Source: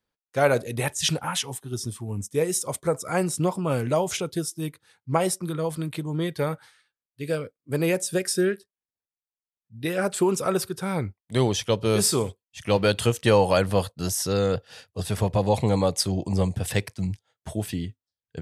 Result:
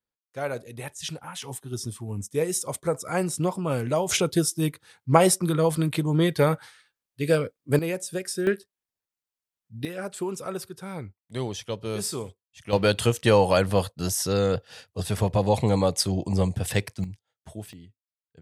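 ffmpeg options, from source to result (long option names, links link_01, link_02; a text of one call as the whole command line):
ffmpeg -i in.wav -af "asetnsamples=nb_out_samples=441:pad=0,asendcmd='1.42 volume volume -1.5dB;4.09 volume volume 5.5dB;7.79 volume volume -5.5dB;8.47 volume volume 3dB;9.85 volume volume -8.5dB;12.73 volume volume 0dB;17.04 volume volume -9dB;17.73 volume volume -17dB',volume=-10dB" out.wav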